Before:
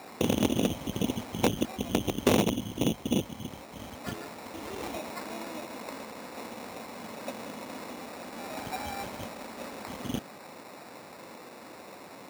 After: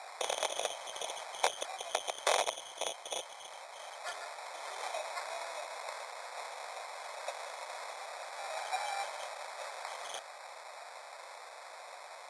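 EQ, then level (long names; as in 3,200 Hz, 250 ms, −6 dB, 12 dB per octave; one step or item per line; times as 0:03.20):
elliptic band-pass filter 640–9,800 Hz, stop band 40 dB
Butterworth band-reject 2,800 Hz, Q 5.5
+1.0 dB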